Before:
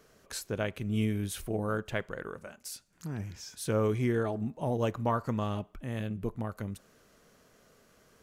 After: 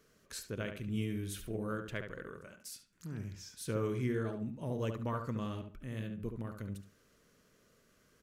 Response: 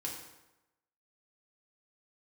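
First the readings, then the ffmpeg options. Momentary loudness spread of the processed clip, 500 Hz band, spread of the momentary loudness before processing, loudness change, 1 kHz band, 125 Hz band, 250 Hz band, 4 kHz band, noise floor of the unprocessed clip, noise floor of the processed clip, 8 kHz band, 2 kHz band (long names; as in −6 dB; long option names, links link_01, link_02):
12 LU, −7.0 dB, 13 LU, −6.0 dB, −9.0 dB, −5.0 dB, −5.5 dB, −5.5 dB, −64 dBFS, −69 dBFS, −5.5 dB, −5.5 dB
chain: -filter_complex "[0:a]equalizer=frequency=770:width=2.1:gain=-10,asplit=2[link_01][link_02];[link_02]adelay=71,lowpass=frequency=2600:poles=1,volume=-6dB,asplit=2[link_03][link_04];[link_04]adelay=71,lowpass=frequency=2600:poles=1,volume=0.27,asplit=2[link_05][link_06];[link_06]adelay=71,lowpass=frequency=2600:poles=1,volume=0.27[link_07];[link_03][link_05][link_07]amix=inputs=3:normalize=0[link_08];[link_01][link_08]amix=inputs=2:normalize=0,volume=-5.5dB"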